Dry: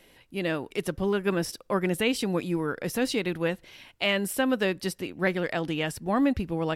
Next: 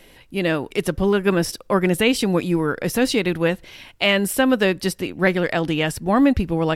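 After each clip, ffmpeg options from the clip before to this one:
ffmpeg -i in.wav -af "lowshelf=frequency=64:gain=7,volume=7.5dB" out.wav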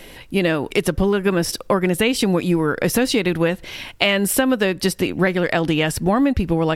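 ffmpeg -i in.wav -af "acompressor=threshold=-23dB:ratio=6,volume=8.5dB" out.wav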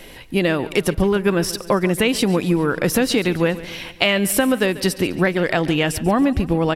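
ffmpeg -i in.wav -af "aecho=1:1:140|280|420|560|700:0.141|0.0777|0.0427|0.0235|0.0129" out.wav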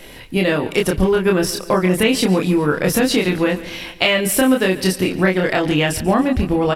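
ffmpeg -i in.wav -filter_complex "[0:a]asplit=2[link_01][link_02];[link_02]adelay=27,volume=-2.5dB[link_03];[link_01][link_03]amix=inputs=2:normalize=0" out.wav

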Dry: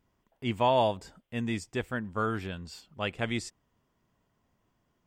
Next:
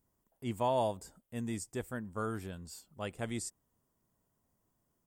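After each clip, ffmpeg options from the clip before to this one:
ffmpeg -i in.wav -af "firequalizer=gain_entry='entry(520,0);entry(2600,-8);entry(9000,13)':delay=0.05:min_phase=1,volume=-5.5dB" out.wav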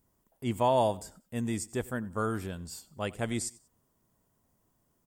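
ffmpeg -i in.wav -af "aecho=1:1:93|186:0.0841|0.0261,volume=5.5dB" out.wav

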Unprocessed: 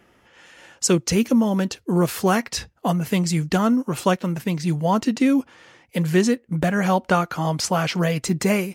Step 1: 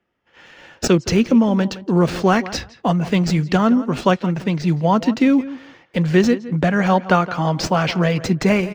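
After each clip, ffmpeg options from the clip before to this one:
ffmpeg -i in.wav -filter_complex "[0:a]agate=range=-20dB:threshold=-53dB:ratio=16:detection=peak,acrossover=split=130|6000[link_01][link_02][link_03];[link_02]asplit=2[link_04][link_05];[link_05]adelay=167,lowpass=frequency=2700:poles=1,volume=-15dB,asplit=2[link_06][link_07];[link_07]adelay=167,lowpass=frequency=2700:poles=1,volume=0.17[link_08];[link_04][link_06][link_08]amix=inputs=3:normalize=0[link_09];[link_03]acrusher=samples=42:mix=1:aa=0.000001[link_10];[link_01][link_09][link_10]amix=inputs=3:normalize=0,volume=3.5dB" out.wav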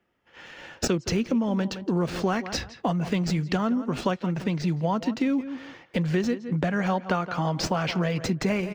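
ffmpeg -i in.wav -af "acompressor=threshold=-25dB:ratio=3" out.wav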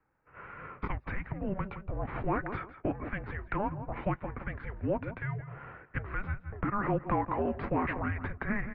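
ffmpeg -i in.wav -filter_complex "[0:a]acrossover=split=170|1100[link_01][link_02][link_03];[link_01]aeval=exprs='0.0158*(abs(mod(val(0)/0.0158+3,4)-2)-1)':channel_layout=same[link_04];[link_02]alimiter=limit=-21.5dB:level=0:latency=1[link_05];[link_04][link_05][link_03]amix=inputs=3:normalize=0,highpass=frequency=390:width_type=q:width=0.5412,highpass=frequency=390:width_type=q:width=1.307,lowpass=frequency=2400:width_type=q:width=0.5176,lowpass=frequency=2400:width_type=q:width=0.7071,lowpass=frequency=2400:width_type=q:width=1.932,afreqshift=-400" out.wav

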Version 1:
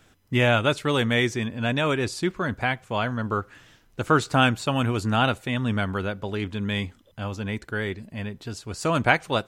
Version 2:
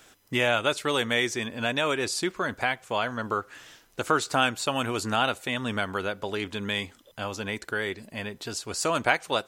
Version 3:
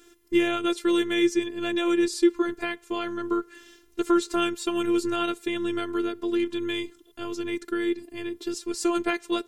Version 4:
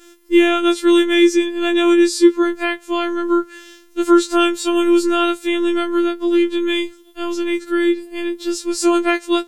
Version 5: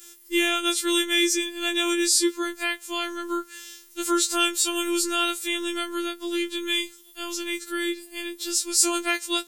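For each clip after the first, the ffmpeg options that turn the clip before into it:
ffmpeg -i in.wav -af "bass=frequency=250:gain=-12,treble=frequency=4000:gain=5,acompressor=threshold=-35dB:ratio=1.5,volume=4dB" out.wav
ffmpeg -i in.wav -af "afftfilt=real='hypot(re,im)*cos(PI*b)':imag='0':win_size=512:overlap=0.75,lowshelf=frequency=510:width_type=q:width=3:gain=6.5" out.wav
ffmpeg -i in.wav -af "acontrast=37,afftfilt=real='re*4*eq(mod(b,16),0)':imag='im*4*eq(mod(b,16),0)':win_size=2048:overlap=0.75,volume=-5dB" out.wav
ffmpeg -i in.wav -af "crystalizer=i=9.5:c=0,volume=-14dB" out.wav

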